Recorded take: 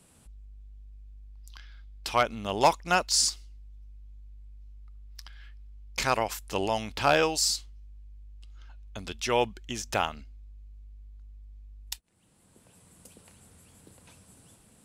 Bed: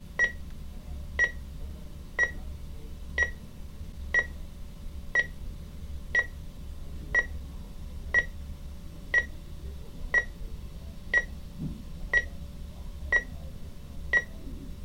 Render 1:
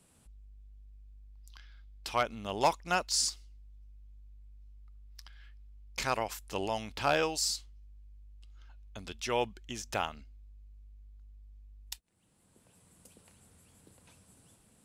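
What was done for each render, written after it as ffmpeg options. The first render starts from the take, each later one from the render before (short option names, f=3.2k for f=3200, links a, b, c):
-af "volume=-5.5dB"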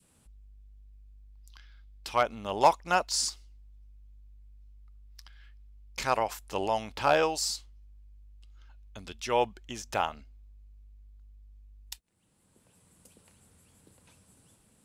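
-af "bandreject=f=700:w=20,adynamicequalizer=threshold=0.00708:dfrequency=770:dqfactor=0.8:tfrequency=770:tqfactor=0.8:attack=5:release=100:ratio=0.375:range=3.5:mode=boostabove:tftype=bell"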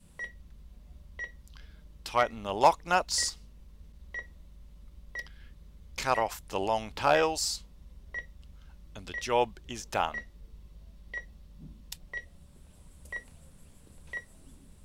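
-filter_complex "[1:a]volume=-14dB[a];[0:a][a]amix=inputs=2:normalize=0"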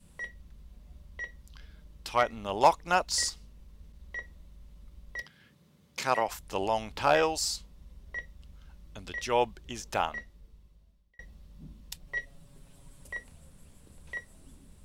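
-filter_complex "[0:a]asettb=1/sr,asplit=3[a][b][c];[a]atrim=end=5.224[d];[b]atrim=start=5.22:end=6.28,asetpts=PTS-STARTPTS,afade=t=in:d=0.004:c=qsin,afade=t=out:st=1.056:d=0.004:c=qsin,highpass=f=120:w=0.5412,highpass=f=120:w=1.3066[e];[c]atrim=start=6.276[f];[d][e]acrossfade=d=0.004:c1=hsin:c2=qsin[g];[g][f]acrossfade=d=0.004:c1=qsin:c2=hsin,asettb=1/sr,asplit=3[h][i][j];[h]atrim=end=12.064[k];[i]atrim=start=12.06:end=13.08,asetpts=PTS-STARTPTS,afade=t=in:d=0.004:c=qsin,afade=t=out:st=1.016:d=0.004:c=qsin,aecho=1:1:7.3:0.74,atrim=end_sample=44982[l];[j]atrim=start=13.076[m];[k][l]acrossfade=d=0.004:c1=hsin:c2=qsin[n];[n][m]acrossfade=d=0.004:c1=qsin:c2=hsin,asplit=2[o][p];[o]atrim=end=11.19,asetpts=PTS-STARTPTS,afade=t=out:st=9.98:d=1.21[q];[p]atrim=start=11.19,asetpts=PTS-STARTPTS,afade=t=in:d=0.004:c=hsin[r];[q][r]concat=n=2:v=0:a=1"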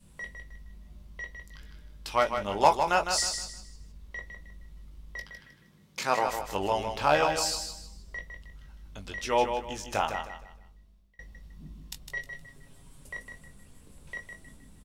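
-filter_complex "[0:a]asplit=2[a][b];[b]adelay=20,volume=-7dB[c];[a][c]amix=inputs=2:normalize=0,aecho=1:1:156|312|468|624:0.447|0.138|0.0429|0.0133"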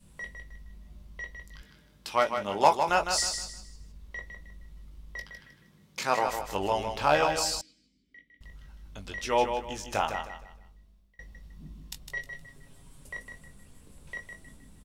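-filter_complex "[0:a]asettb=1/sr,asplit=3[a][b][c];[a]atrim=end=1.634[d];[b]atrim=start=1.63:end=2.89,asetpts=PTS-STARTPTS,afade=t=in:d=0.004:c=qsin,afade=t=out:st=1.256:d=0.004:c=qsin,highpass=120[e];[c]atrim=start=2.886[f];[d][e]acrossfade=d=0.004:c1=hsin:c2=qsin[g];[g][f]acrossfade=d=0.004:c1=qsin:c2=hsin,asettb=1/sr,asplit=3[h][i][j];[h]atrim=end=7.614[k];[i]atrim=start=7.61:end=8.41,asetpts=PTS-STARTPTS,afade=t=in:d=0.004:c=qsin,afade=t=out:st=0.796:d=0.004:c=qsin,asplit=3[l][m][n];[l]bandpass=f=270:t=q:w=8,volume=0dB[o];[m]bandpass=f=2.29k:t=q:w=8,volume=-6dB[p];[n]bandpass=f=3.01k:t=q:w=8,volume=-9dB[q];[o][p][q]amix=inputs=3:normalize=0[r];[j]atrim=start=8.406[s];[k][r]acrossfade=d=0.004:c1=hsin:c2=qsin[t];[t][s]acrossfade=d=0.004:c1=qsin:c2=hsin"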